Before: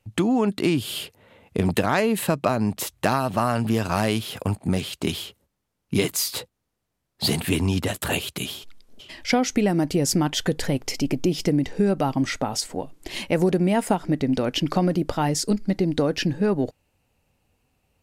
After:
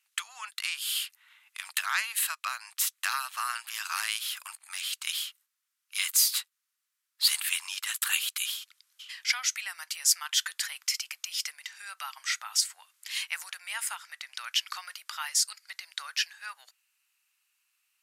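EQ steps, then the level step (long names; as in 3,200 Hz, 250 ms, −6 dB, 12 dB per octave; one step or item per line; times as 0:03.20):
Butterworth high-pass 1,200 Hz 36 dB per octave
parametric band 12,000 Hz +6 dB 2.2 octaves
−2.5 dB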